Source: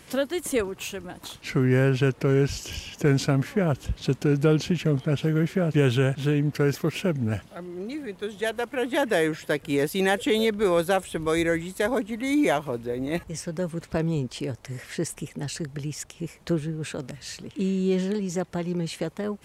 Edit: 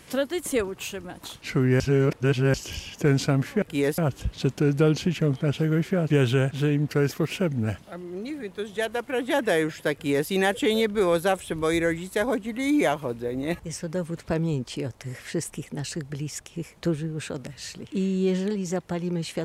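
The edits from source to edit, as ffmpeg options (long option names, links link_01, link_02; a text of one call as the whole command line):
ffmpeg -i in.wav -filter_complex "[0:a]asplit=5[link_01][link_02][link_03][link_04][link_05];[link_01]atrim=end=1.802[link_06];[link_02]atrim=start=1.798:end=2.542,asetpts=PTS-STARTPTS,areverse[link_07];[link_03]atrim=start=2.538:end=3.622[link_08];[link_04]atrim=start=9.568:end=9.932[link_09];[link_05]atrim=start=3.618[link_10];[link_06][link_07]acrossfade=duration=0.004:curve1=hsin:curve2=hsin[link_11];[link_11][link_08]acrossfade=duration=0.004:curve1=hsin:curve2=hsin[link_12];[link_12][link_09]acrossfade=duration=0.004:curve1=hsin:curve2=hsin[link_13];[link_13][link_10]acrossfade=duration=0.004:curve1=hsin:curve2=hsin" out.wav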